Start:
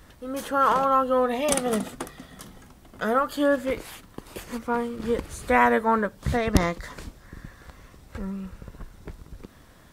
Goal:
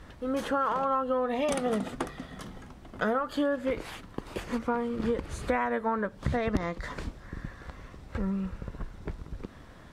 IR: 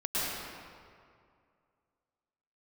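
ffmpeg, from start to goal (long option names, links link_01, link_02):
-af "aemphasis=mode=reproduction:type=50fm,acompressor=threshold=-27dB:ratio=10,volume=2.5dB"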